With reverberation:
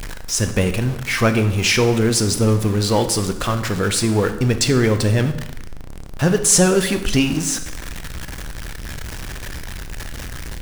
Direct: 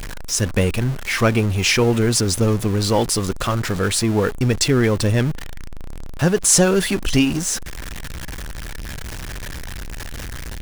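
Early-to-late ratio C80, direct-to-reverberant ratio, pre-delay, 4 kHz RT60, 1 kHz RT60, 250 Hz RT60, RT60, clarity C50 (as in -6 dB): 13.5 dB, 8.5 dB, 21 ms, 0.75 s, 0.85 s, 1.0 s, 0.85 s, 11.0 dB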